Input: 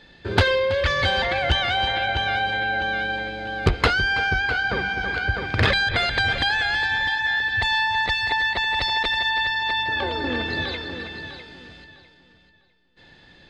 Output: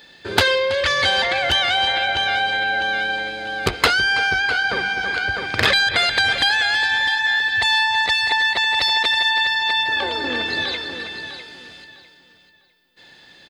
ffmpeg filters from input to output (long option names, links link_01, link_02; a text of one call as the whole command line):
ffmpeg -i in.wav -filter_complex "[0:a]aemphasis=mode=production:type=bsi,asplit=2[link_01][link_02];[link_02]adelay=472.3,volume=-28dB,highshelf=frequency=4000:gain=-10.6[link_03];[link_01][link_03]amix=inputs=2:normalize=0,volume=2.5dB" out.wav